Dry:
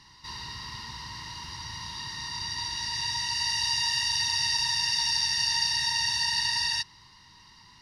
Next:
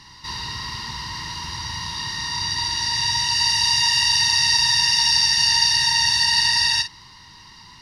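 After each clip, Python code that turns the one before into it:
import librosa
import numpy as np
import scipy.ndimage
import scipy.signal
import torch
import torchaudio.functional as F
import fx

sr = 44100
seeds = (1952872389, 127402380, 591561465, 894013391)

y = fx.doubler(x, sr, ms=49.0, db=-10)
y = F.gain(torch.from_numpy(y), 8.5).numpy()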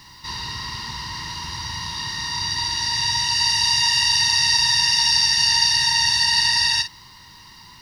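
y = fx.quant_dither(x, sr, seeds[0], bits=10, dither='triangular')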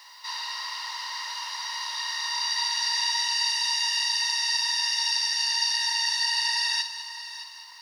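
y = scipy.signal.sosfilt(scipy.signal.ellip(4, 1.0, 80, 600.0, 'highpass', fs=sr, output='sos'), x)
y = fx.rider(y, sr, range_db=4, speed_s=0.5)
y = fx.echo_heads(y, sr, ms=205, heads='first and third', feedback_pct=47, wet_db=-14.0)
y = F.gain(torch.from_numpy(y), -6.0).numpy()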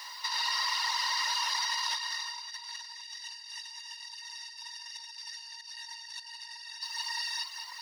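y = fx.spec_repair(x, sr, seeds[1], start_s=3.05, length_s=0.87, low_hz=550.0, high_hz=1700.0, source='after')
y = fx.dereverb_blind(y, sr, rt60_s=0.75)
y = fx.over_compress(y, sr, threshold_db=-36.0, ratio=-0.5)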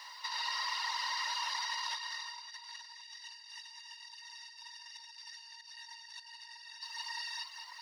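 y = fx.high_shelf(x, sr, hz=6600.0, db=-9.5)
y = fx.quant_float(y, sr, bits=6)
y = F.gain(torch.from_numpy(y), -4.0).numpy()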